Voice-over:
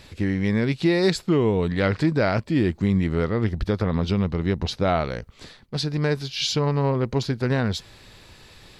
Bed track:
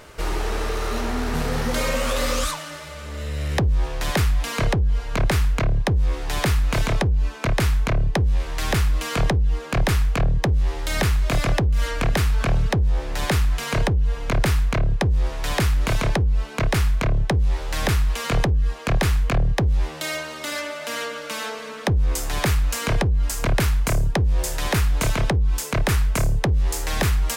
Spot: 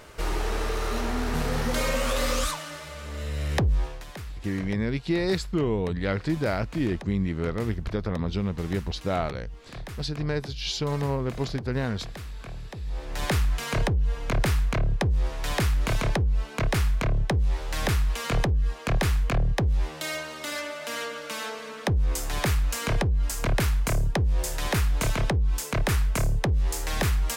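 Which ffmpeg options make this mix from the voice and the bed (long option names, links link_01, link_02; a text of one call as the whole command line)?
ffmpeg -i stem1.wav -i stem2.wav -filter_complex "[0:a]adelay=4250,volume=-5.5dB[link_01];[1:a]volume=11.5dB,afade=type=out:start_time=3.73:duration=0.32:silence=0.16788,afade=type=in:start_time=12.77:duration=0.5:silence=0.188365[link_02];[link_01][link_02]amix=inputs=2:normalize=0" out.wav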